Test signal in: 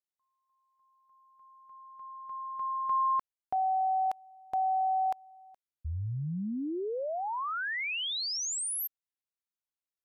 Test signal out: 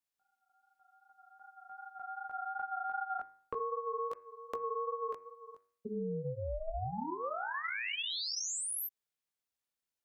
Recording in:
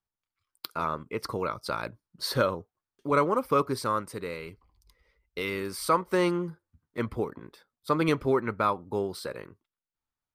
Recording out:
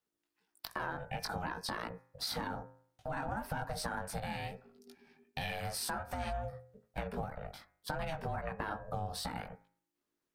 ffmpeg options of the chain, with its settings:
-af "flanger=delay=16.5:depth=3.4:speed=2.6,alimiter=limit=-23dB:level=0:latency=1:release=37,acompressor=threshold=-42dB:ratio=6:attack=15:release=110:knee=6:detection=rms,afreqshift=27,bandreject=f=99.14:t=h:w=4,bandreject=f=198.28:t=h:w=4,bandreject=f=297.42:t=h:w=4,bandreject=f=396.56:t=h:w=4,bandreject=f=495.7:t=h:w=4,bandreject=f=594.84:t=h:w=4,bandreject=f=693.98:t=h:w=4,bandreject=f=793.12:t=h:w=4,bandreject=f=892.26:t=h:w=4,bandreject=f=991.4:t=h:w=4,bandreject=f=1.09054k:t=h:w=4,bandreject=f=1.18968k:t=h:w=4,bandreject=f=1.28882k:t=h:w=4,bandreject=f=1.38796k:t=h:w=4,bandreject=f=1.4871k:t=h:w=4,bandreject=f=1.58624k:t=h:w=4,bandreject=f=1.68538k:t=h:w=4,bandreject=f=1.78452k:t=h:w=4,bandreject=f=1.88366k:t=h:w=4,bandreject=f=1.9828k:t=h:w=4,bandreject=f=2.08194k:t=h:w=4,bandreject=f=2.18108k:t=h:w=4,bandreject=f=2.28022k:t=h:w=4,aeval=exprs='val(0)*sin(2*PI*320*n/s)':c=same,volume=9dB"

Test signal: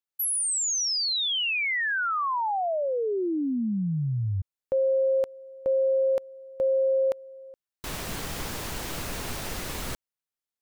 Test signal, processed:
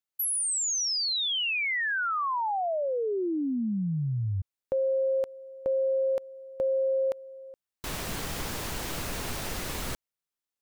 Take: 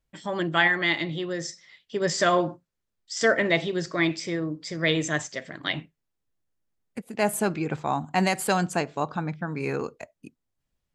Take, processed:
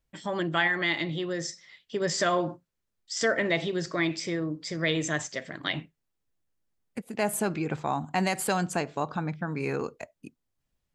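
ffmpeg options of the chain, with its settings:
-af "acompressor=threshold=-31dB:ratio=1.5:attack=30:release=71"

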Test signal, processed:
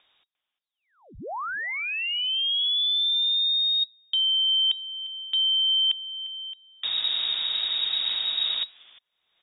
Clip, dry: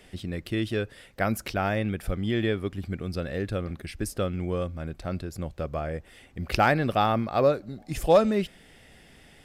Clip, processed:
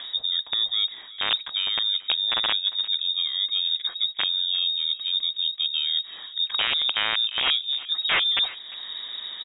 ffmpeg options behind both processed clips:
-filter_complex "[0:a]asplit=2[a][b];[b]acompressor=mode=upward:threshold=-29dB:ratio=2.5,volume=-2dB[c];[a][c]amix=inputs=2:normalize=0,tiltshelf=f=820:g=9,aeval=exprs='(mod(1.78*val(0)+1,2)-1)/1.78':c=same,areverse,acompressor=threshold=-22dB:ratio=6,areverse,highshelf=f=2.2k:g=7,asplit=2[d][e];[e]adelay=350,highpass=300,lowpass=3.4k,asoftclip=type=hard:threshold=-15.5dB,volume=-17dB[f];[d][f]amix=inputs=2:normalize=0,lowpass=f=3.2k:t=q:w=0.5098,lowpass=f=3.2k:t=q:w=0.6013,lowpass=f=3.2k:t=q:w=0.9,lowpass=f=3.2k:t=q:w=2.563,afreqshift=-3800"

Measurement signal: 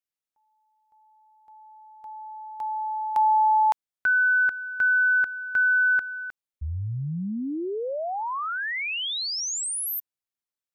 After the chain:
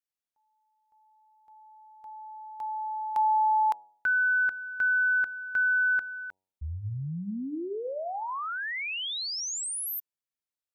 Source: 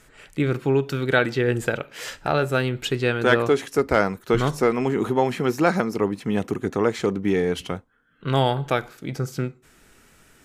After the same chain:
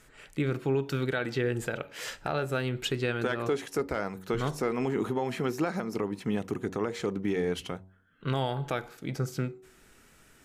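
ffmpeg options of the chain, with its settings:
-af "alimiter=limit=-15dB:level=0:latency=1:release=188,bandreject=f=94.17:t=h:w=4,bandreject=f=188.34:t=h:w=4,bandreject=f=282.51:t=h:w=4,bandreject=f=376.68:t=h:w=4,bandreject=f=470.85:t=h:w=4,bandreject=f=565.02:t=h:w=4,bandreject=f=659.19:t=h:w=4,bandreject=f=753.36:t=h:w=4,bandreject=f=847.53:t=h:w=4,bandreject=f=941.7:t=h:w=4,volume=-4dB"

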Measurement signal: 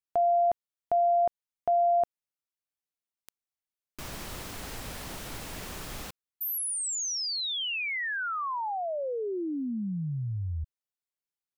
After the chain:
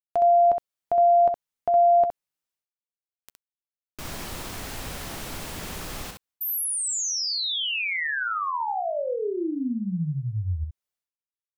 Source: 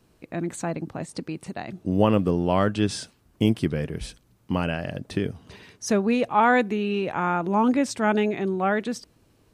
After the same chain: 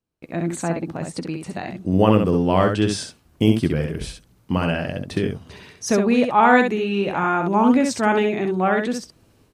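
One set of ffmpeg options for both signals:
-af "agate=range=-27dB:threshold=-46dB:ratio=3:release=378:detection=rms,aecho=1:1:12|65:0.224|0.562,volume=3dB"

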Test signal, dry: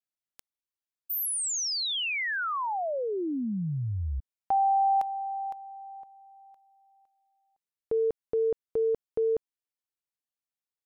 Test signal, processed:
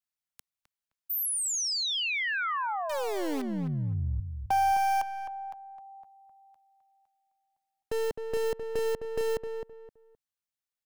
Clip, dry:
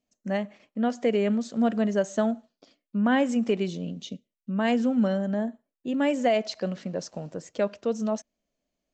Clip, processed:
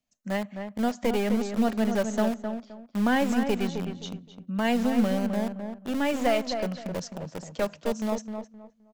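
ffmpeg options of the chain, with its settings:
-filter_complex "[0:a]acrossover=split=270|580|1800[a][b][c][d];[b]acrusher=bits=3:dc=4:mix=0:aa=0.000001[e];[a][e][c][d]amix=inputs=4:normalize=0,asplit=2[f][g];[g]adelay=260,lowpass=f=1.7k:p=1,volume=-6.5dB,asplit=2[h][i];[i]adelay=260,lowpass=f=1.7k:p=1,volume=0.26,asplit=2[j][k];[k]adelay=260,lowpass=f=1.7k:p=1,volume=0.26[l];[f][h][j][l]amix=inputs=4:normalize=0"

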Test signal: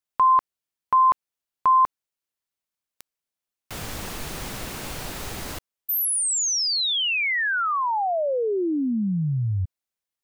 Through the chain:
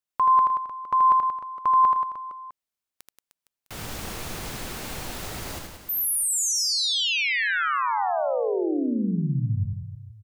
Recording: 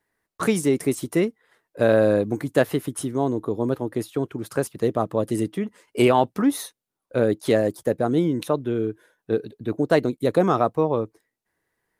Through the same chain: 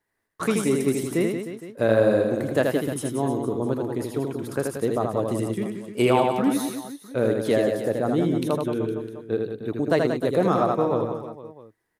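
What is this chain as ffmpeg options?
-af "aecho=1:1:80|180|305|461.2|656.6:0.631|0.398|0.251|0.158|0.1,volume=-3dB"

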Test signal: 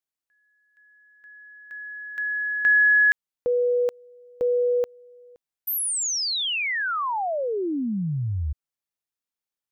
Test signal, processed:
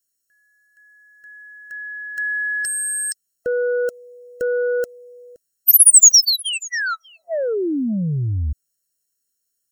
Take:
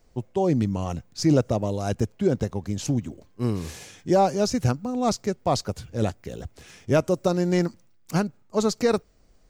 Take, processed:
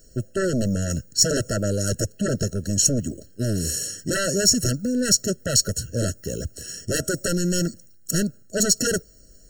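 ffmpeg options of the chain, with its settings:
-af "aeval=exprs='0.316*sin(PI/2*3.55*val(0)/0.316)':c=same,highshelf=f=4.5k:t=q:w=1.5:g=12.5,afftfilt=real='re*eq(mod(floor(b*sr/1024/650),2),0)':imag='im*eq(mod(floor(b*sr/1024/650),2),0)':win_size=1024:overlap=0.75,volume=-8dB"

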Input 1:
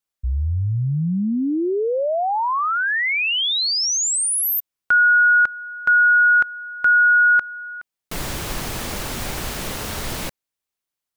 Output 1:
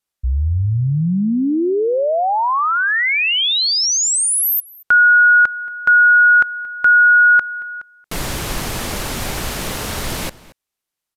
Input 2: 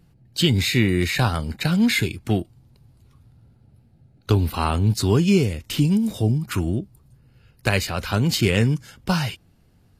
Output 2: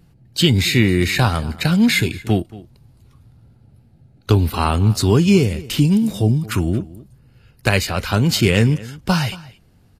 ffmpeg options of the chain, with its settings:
-filter_complex "[0:a]aresample=32000,aresample=44100,asplit=2[a][b];[b]adelay=227.4,volume=-19dB,highshelf=f=4k:g=-5.12[c];[a][c]amix=inputs=2:normalize=0,volume=4dB"

